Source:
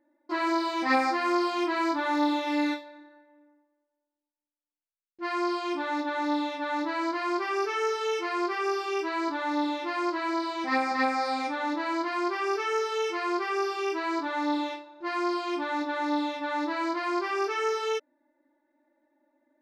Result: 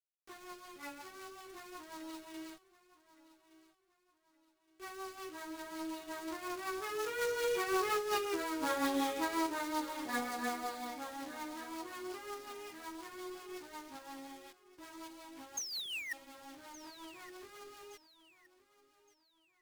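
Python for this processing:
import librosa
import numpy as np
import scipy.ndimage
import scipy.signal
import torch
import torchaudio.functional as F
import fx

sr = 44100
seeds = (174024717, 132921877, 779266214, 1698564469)

p1 = fx.doppler_pass(x, sr, speed_mps=27, closest_m=7.7, pass_at_s=8.39)
p2 = fx.sample_hold(p1, sr, seeds[0], rate_hz=5600.0, jitter_pct=0)
p3 = p1 + F.gain(torch.from_numpy(p2), -7.5).numpy()
p4 = fx.low_shelf(p3, sr, hz=120.0, db=-10.5)
p5 = fx.doubler(p4, sr, ms=38.0, db=-10.5)
p6 = fx.spec_paint(p5, sr, seeds[1], shape='fall', start_s=15.57, length_s=0.56, low_hz=1800.0, high_hz=6600.0, level_db=-25.0)
p7 = fx.over_compress(p6, sr, threshold_db=-34.0, ratio=-1.0)
p8 = fx.quant_companded(p7, sr, bits=4)
p9 = fx.rotary(p8, sr, hz=5.5)
p10 = fx.echo_feedback(p9, sr, ms=1168, feedback_pct=36, wet_db=-17.5)
y = F.gain(torch.from_numpy(p10), 1.5).numpy()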